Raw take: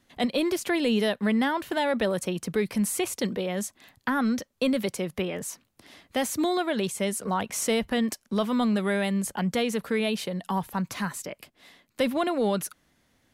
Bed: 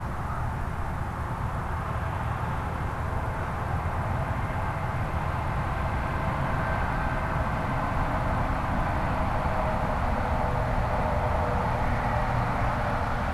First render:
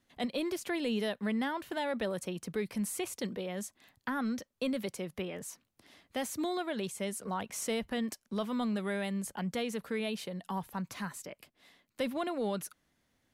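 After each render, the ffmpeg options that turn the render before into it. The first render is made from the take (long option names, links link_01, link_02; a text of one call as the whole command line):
ffmpeg -i in.wav -af "volume=-8.5dB" out.wav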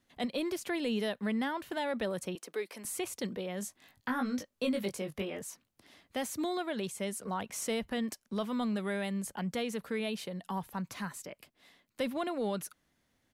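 ffmpeg -i in.wav -filter_complex "[0:a]asettb=1/sr,asplit=3[link_01][link_02][link_03];[link_01]atrim=end=2.354[link_04];[link_02]atrim=start=2.35:end=2.85,asetpts=PTS-STARTPTS,afade=type=in:duration=0.004:curve=qsin,afade=type=out:start_time=0.496:duration=0.004:curve=qsin,highpass=frequency=340:width=0.5412,highpass=frequency=340:width=1.3066[link_05];[link_03]atrim=start=2.846[link_06];[link_04][link_05]acrossfade=duration=0.004:curve1=hsin:curve2=qsin[link_07];[link_07][link_06]acrossfade=duration=0.004:curve1=qsin:curve2=hsin,asplit=3[link_08][link_09][link_10];[link_08]afade=type=out:start_time=3.61:duration=0.02[link_11];[link_09]asplit=2[link_12][link_13];[link_13]adelay=20,volume=-4dB[link_14];[link_12][link_14]amix=inputs=2:normalize=0,afade=type=in:start_time=3.61:duration=0.02,afade=type=out:start_time=5.4:duration=0.02[link_15];[link_10]afade=type=in:start_time=5.4:duration=0.02[link_16];[link_11][link_15][link_16]amix=inputs=3:normalize=0" out.wav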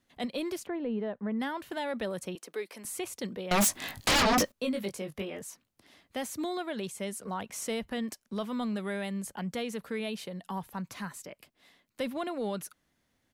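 ffmpeg -i in.wav -filter_complex "[0:a]asplit=3[link_01][link_02][link_03];[link_01]afade=type=out:start_time=0.65:duration=0.02[link_04];[link_02]lowpass=1200,afade=type=in:start_time=0.65:duration=0.02,afade=type=out:start_time=1.39:duration=0.02[link_05];[link_03]afade=type=in:start_time=1.39:duration=0.02[link_06];[link_04][link_05][link_06]amix=inputs=3:normalize=0,asettb=1/sr,asplit=3[link_07][link_08][link_09];[link_07]atrim=end=3.514[link_10];[link_08]atrim=start=3.51:end=4.52,asetpts=PTS-STARTPTS,afade=type=in:duration=0.004:curve=qsin,afade=type=out:start_time=1.006:duration=0.004:curve=qsin,aeval=exprs='0.0944*sin(PI/2*7.94*val(0)/0.0944)':channel_layout=same[link_11];[link_09]atrim=start=4.516[link_12];[link_10][link_11]acrossfade=duration=0.004:curve1=hsin:curve2=qsin[link_13];[link_13][link_12]acrossfade=duration=0.004:curve1=qsin:curve2=hsin" out.wav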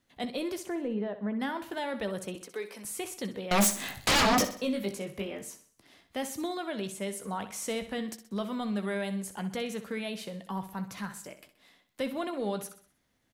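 ffmpeg -i in.wav -filter_complex "[0:a]asplit=2[link_01][link_02];[link_02]adelay=15,volume=-11dB[link_03];[link_01][link_03]amix=inputs=2:normalize=0,asplit=2[link_04][link_05];[link_05]aecho=0:1:63|126|189|252|315:0.251|0.113|0.0509|0.0229|0.0103[link_06];[link_04][link_06]amix=inputs=2:normalize=0" out.wav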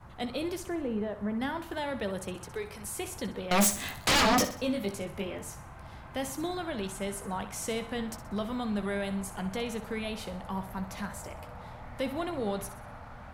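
ffmpeg -i in.wav -i bed.wav -filter_complex "[1:a]volume=-18.5dB[link_01];[0:a][link_01]amix=inputs=2:normalize=0" out.wav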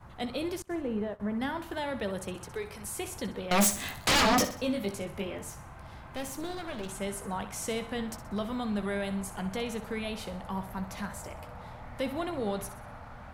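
ffmpeg -i in.wav -filter_complex "[0:a]asettb=1/sr,asplit=3[link_01][link_02][link_03];[link_01]atrim=end=0.624[link_04];[link_02]atrim=start=0.62:end=1.2,asetpts=PTS-STARTPTS,afade=type=in:duration=0.004:curve=qsin,afade=type=out:start_time=0.576:duration=0.004:curve=qsin,agate=range=-33dB:threshold=-34dB:ratio=3:release=100:detection=peak[link_05];[link_03]atrim=start=1.196[link_06];[link_04][link_05]acrossfade=duration=0.004:curve1=hsin:curve2=qsin[link_07];[link_07][link_06]acrossfade=duration=0.004:curve1=qsin:curve2=hsin,asettb=1/sr,asplit=3[link_08][link_09][link_10];[link_08]atrim=end=5.494[link_11];[link_09]atrim=start=5.49:end=6.89,asetpts=PTS-STARTPTS,afade=type=in:duration=0.004:curve=qsin,afade=type=out:start_time=1.396:duration=0.004:curve=qsin,aeval=exprs='clip(val(0),-1,0.01)':channel_layout=same[link_12];[link_10]atrim=start=6.886[link_13];[link_11][link_12]acrossfade=duration=0.004:curve1=hsin:curve2=qsin[link_14];[link_14][link_13]acrossfade=duration=0.004:curve1=qsin:curve2=hsin" out.wav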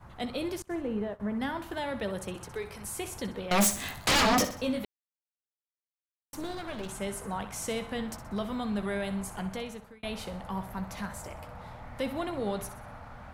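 ffmpeg -i in.wav -filter_complex "[0:a]asplit=4[link_01][link_02][link_03][link_04];[link_01]atrim=end=4.85,asetpts=PTS-STARTPTS,afade=type=out:start_time=4.846:duration=0.004:curve=hsin[link_05];[link_02]atrim=start=4.85:end=6.33,asetpts=PTS-STARTPTS,volume=0[link_06];[link_03]atrim=start=6.33:end=10.03,asetpts=PTS-STARTPTS,afade=type=in:duration=0.004:curve=hsin,afade=type=out:start_time=3.08:duration=0.62[link_07];[link_04]atrim=start=10.03,asetpts=PTS-STARTPTS,afade=type=in:duration=0.004:curve=hsin[link_08];[link_05][link_06][link_07][link_08]concat=n=4:v=0:a=1" out.wav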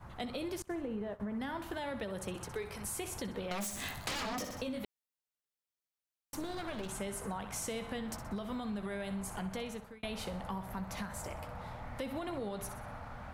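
ffmpeg -i in.wav -af "alimiter=level_in=2.5dB:limit=-24dB:level=0:latency=1:release=159,volume=-2.5dB,acompressor=threshold=-35dB:ratio=6" out.wav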